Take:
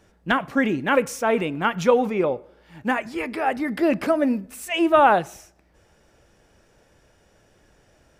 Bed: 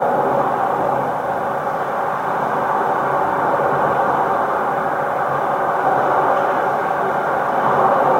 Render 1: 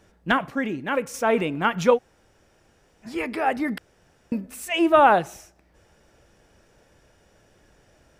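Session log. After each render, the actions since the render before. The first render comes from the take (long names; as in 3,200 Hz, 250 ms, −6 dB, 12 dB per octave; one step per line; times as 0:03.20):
0:00.50–0:01.14: clip gain −5.5 dB
0:01.96–0:03.05: fill with room tone, crossfade 0.06 s
0:03.78–0:04.32: fill with room tone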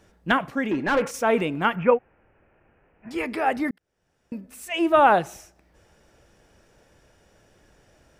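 0:00.71–0:01.11: mid-hump overdrive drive 22 dB, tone 1,400 Hz, clips at −13 dBFS
0:01.76–0:03.11: elliptic low-pass filter 2,600 Hz
0:03.71–0:05.19: fade in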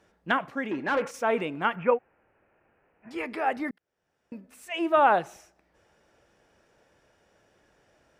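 high-pass filter 1,100 Hz 6 dB per octave
spectral tilt −3 dB per octave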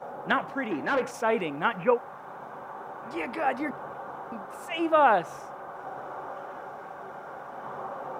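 mix in bed −22.5 dB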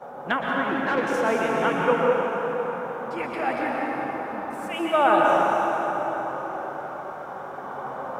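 dense smooth reverb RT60 4.7 s, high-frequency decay 0.65×, pre-delay 105 ms, DRR −3 dB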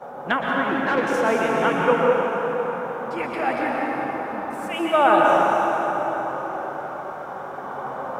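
level +2.5 dB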